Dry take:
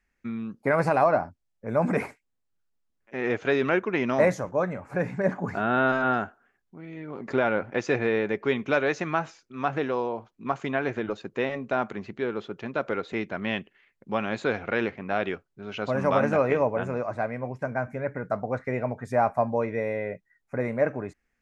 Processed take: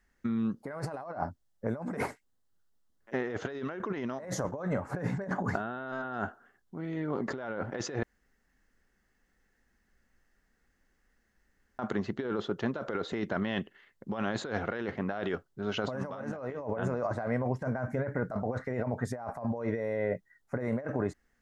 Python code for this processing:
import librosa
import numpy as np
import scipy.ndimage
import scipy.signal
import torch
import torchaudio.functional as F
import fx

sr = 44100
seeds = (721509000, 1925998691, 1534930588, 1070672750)

y = fx.edit(x, sr, fx.room_tone_fill(start_s=8.03, length_s=3.76), tone=tone)
y = fx.peak_eq(y, sr, hz=2400.0, db=-12.5, octaves=0.27)
y = fx.over_compress(y, sr, threshold_db=-33.0, ratio=-1.0)
y = y * 10.0 ** (-1.0 / 20.0)